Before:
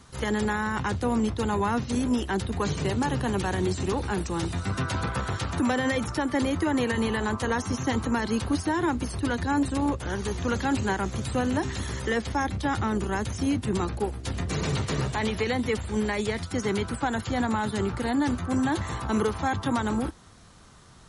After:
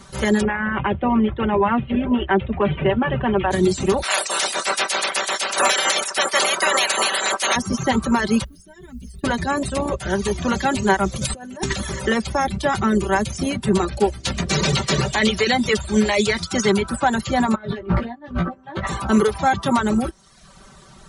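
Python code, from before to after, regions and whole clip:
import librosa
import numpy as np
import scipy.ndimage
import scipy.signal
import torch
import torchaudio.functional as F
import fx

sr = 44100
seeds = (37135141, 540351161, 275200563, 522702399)

y = fx.chain(x, sr, fx.steep_lowpass(hz=3200.0, slope=72),
    fx.peak_eq(hz=180.0, db=-4.5, octaves=0.29), at=(0.42, 3.51))
y = fx.spec_clip(y, sr, under_db=27, at=(4.02, 7.55), fade=0.02)
y = fx.highpass(y, sr, hz=450.0, slope=12, at=(4.02, 7.55), fade=0.02)
y = fx.clip_hard(y, sr, threshold_db=-15.5, at=(4.02, 7.55), fade=0.02)
y = fx.chain(y, sr, fx.tone_stack(knobs='10-0-1'),
    fx.comb(ms=4.6, depth=0.79),
    fx.mod_noise(seeds[0], snr_db=33), at=(8.44, 9.24))
y = fx.chain(y, sr, fx.high_shelf(hz=5700.0, db=7.5),
    fx.over_compress(threshold_db=-32.0, ratio=-0.5), at=(11.16, 11.73))
y = fx.chain(y, sr, fx.lowpass(hz=5800.0, slope=12),
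    fx.high_shelf(hz=3100.0, db=11.5), at=(13.91, 16.71))
y = fx.chain(y, sr, fx.over_compress(threshold_db=-32.0, ratio=-0.5),
    fx.air_absorb(metres=320.0),
    fx.doubler(ms=17.0, db=-4.0), at=(17.55, 18.87))
y = fx.dereverb_blind(y, sr, rt60_s=0.78)
y = fx.peak_eq(y, sr, hz=600.0, db=5.0, octaves=0.22)
y = y + 0.65 * np.pad(y, (int(5.2 * sr / 1000.0), 0))[:len(y)]
y = F.gain(torch.from_numpy(y), 7.0).numpy()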